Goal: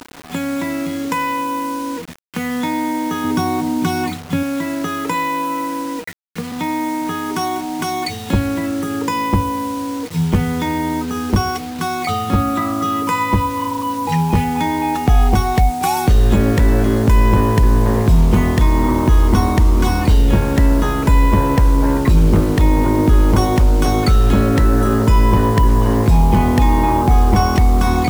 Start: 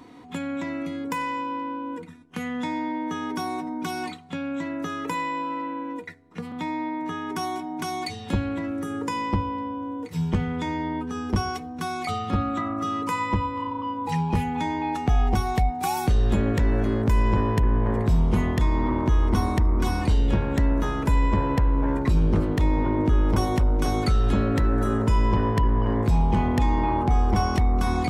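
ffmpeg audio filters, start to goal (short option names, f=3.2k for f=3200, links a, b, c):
-filter_complex "[0:a]asettb=1/sr,asplit=3[a][b][c];[a]atrim=end=3.244[d];[b]atrim=start=3.24:end=4.43,asetpts=PTS-STARTPTS,afade=t=in:d=0.004:c=qsin,afade=t=out:st=1.186:d=0.004:c=qsin,equalizer=f=97:t=o:w=2.2:g=12[e];[c]atrim=start=4.426[f];[d][e]acrossfade=d=0.004:c1=hsin:c2=qsin[g];[g][f]acrossfade=d=0.004:c1=qsin:c2=hsin,acrusher=bits=6:mix=0:aa=0.000001,volume=8.5dB"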